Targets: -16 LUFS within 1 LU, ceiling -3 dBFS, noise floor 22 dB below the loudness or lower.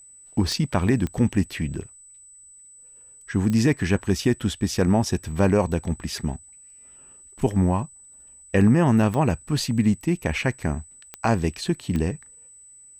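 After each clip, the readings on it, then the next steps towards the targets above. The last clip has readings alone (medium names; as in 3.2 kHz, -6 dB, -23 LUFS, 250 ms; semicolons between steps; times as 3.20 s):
clicks found 6; steady tone 8 kHz; tone level -46 dBFS; loudness -23.5 LUFS; peak level -8.0 dBFS; loudness target -16.0 LUFS
-> de-click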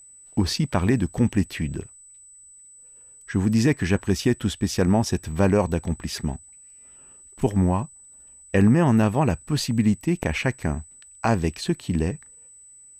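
clicks found 0; steady tone 8 kHz; tone level -46 dBFS
-> band-stop 8 kHz, Q 30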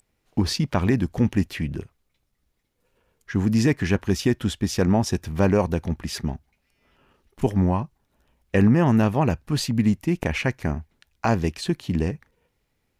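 steady tone not found; loudness -23.5 LUFS; peak level -8.0 dBFS; loudness target -16.0 LUFS
-> trim +7.5 dB; peak limiter -3 dBFS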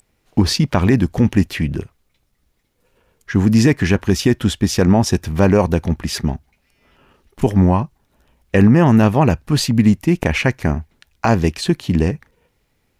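loudness -16.5 LUFS; peak level -3.0 dBFS; noise floor -66 dBFS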